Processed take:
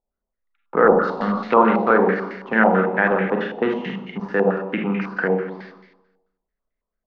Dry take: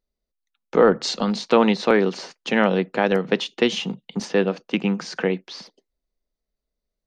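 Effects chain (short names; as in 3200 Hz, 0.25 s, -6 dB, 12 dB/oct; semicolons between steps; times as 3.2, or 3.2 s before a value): Schroeder reverb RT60 0.99 s, combs from 32 ms, DRR 0.5 dB; stepped low-pass 9.1 Hz 820–2000 Hz; gain -3.5 dB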